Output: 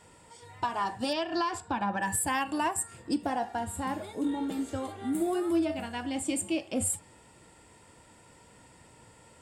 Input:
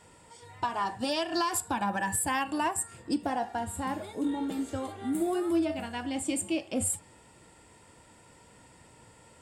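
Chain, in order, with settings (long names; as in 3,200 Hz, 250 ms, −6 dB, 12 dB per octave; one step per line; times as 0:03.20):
0:01.13–0:02.02: high-frequency loss of the air 120 metres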